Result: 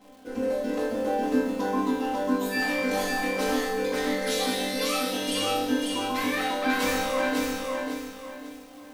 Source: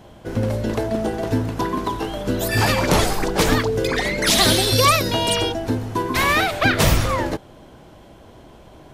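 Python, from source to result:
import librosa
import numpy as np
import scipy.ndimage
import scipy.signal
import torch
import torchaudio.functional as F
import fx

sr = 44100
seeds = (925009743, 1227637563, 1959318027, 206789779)

y = fx.low_shelf_res(x, sr, hz=190.0, db=-7.0, q=3.0)
y = fx.resonator_bank(y, sr, root=43, chord='sus4', decay_s=0.77)
y = fx.dmg_crackle(y, sr, seeds[0], per_s=350.0, level_db=-56.0)
y = fx.rider(y, sr, range_db=4, speed_s=0.5)
y = y + 0.89 * np.pad(y, (int(3.9 * sr / 1000.0), 0))[:len(y)]
y = fx.echo_crushed(y, sr, ms=546, feedback_pct=35, bits=10, wet_db=-3.0)
y = F.gain(torch.from_numpy(y), 4.5).numpy()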